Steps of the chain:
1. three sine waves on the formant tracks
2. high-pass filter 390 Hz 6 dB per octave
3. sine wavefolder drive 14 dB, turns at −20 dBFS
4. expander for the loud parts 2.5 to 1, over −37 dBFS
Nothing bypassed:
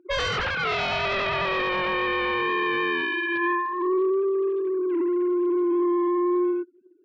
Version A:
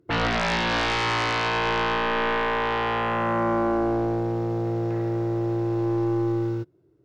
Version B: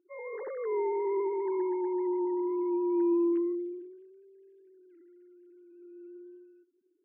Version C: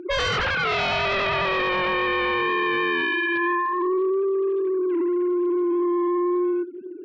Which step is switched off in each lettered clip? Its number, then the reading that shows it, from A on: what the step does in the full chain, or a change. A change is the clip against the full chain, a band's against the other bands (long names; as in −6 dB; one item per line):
1, 125 Hz band +14.5 dB
3, change in crest factor +7.5 dB
4, change in integrated loudness +1.5 LU